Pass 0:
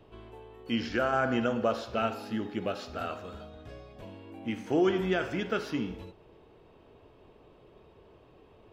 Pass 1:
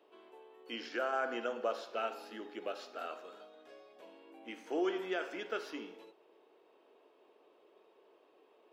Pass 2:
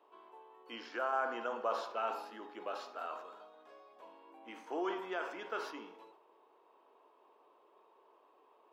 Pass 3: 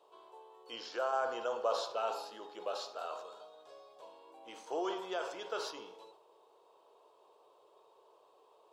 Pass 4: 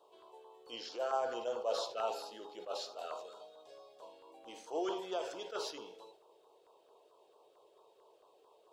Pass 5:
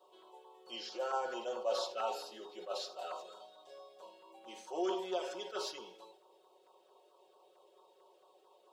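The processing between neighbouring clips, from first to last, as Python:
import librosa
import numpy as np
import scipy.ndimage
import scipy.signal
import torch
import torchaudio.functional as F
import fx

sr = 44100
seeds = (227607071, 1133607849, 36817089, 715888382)

y1 = scipy.signal.sosfilt(scipy.signal.butter(4, 330.0, 'highpass', fs=sr, output='sos'), x)
y1 = y1 * librosa.db_to_amplitude(-6.5)
y2 = fx.peak_eq(y1, sr, hz=1000.0, db=14.0, octaves=0.79)
y2 = fx.sustainer(y2, sr, db_per_s=74.0)
y2 = y2 * librosa.db_to_amplitude(-6.0)
y3 = fx.graphic_eq(y2, sr, hz=(125, 250, 500, 2000, 4000, 8000), db=(12, -12, 7, -8, 9, 10))
y4 = fx.filter_lfo_notch(y3, sr, shape='saw_down', hz=4.5, low_hz=840.0, high_hz=2300.0, q=1.2)
y4 = fx.attack_slew(y4, sr, db_per_s=230.0)
y4 = y4 * librosa.db_to_amplitude(1.0)
y5 = fx.highpass(y4, sr, hz=190.0, slope=6)
y5 = y5 + 0.96 * np.pad(y5, (int(5.4 * sr / 1000.0), 0))[:len(y5)]
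y5 = y5 * librosa.db_to_amplitude(-2.0)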